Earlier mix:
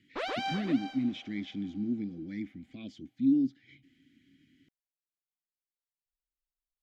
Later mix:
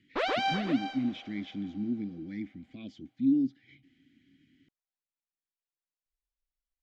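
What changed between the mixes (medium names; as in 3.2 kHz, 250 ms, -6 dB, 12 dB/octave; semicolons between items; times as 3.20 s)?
background +5.5 dB; master: add distance through air 56 m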